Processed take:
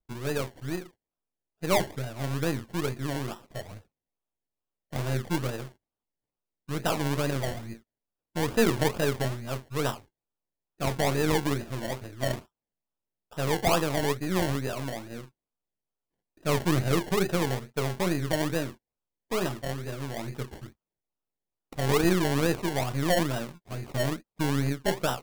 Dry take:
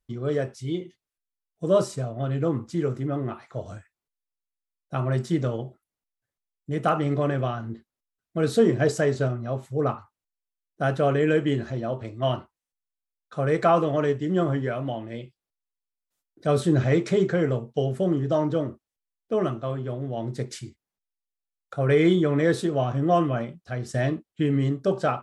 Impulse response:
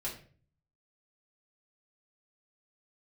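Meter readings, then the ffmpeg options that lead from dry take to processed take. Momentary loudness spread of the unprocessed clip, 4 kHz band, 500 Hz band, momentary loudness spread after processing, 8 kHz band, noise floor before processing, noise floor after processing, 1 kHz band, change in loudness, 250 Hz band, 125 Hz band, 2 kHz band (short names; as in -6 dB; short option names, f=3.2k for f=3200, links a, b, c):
13 LU, +4.5 dB, -5.5 dB, 14 LU, +6.5 dB, under -85 dBFS, under -85 dBFS, -3.0 dB, -4.0 dB, -4.5 dB, -4.5 dB, +0.5 dB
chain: -af "aeval=exprs='if(lt(val(0),0),0.447*val(0),val(0))':c=same,acrusher=samples=28:mix=1:aa=0.000001:lfo=1:lforange=16.8:lforate=2.3,volume=-2dB"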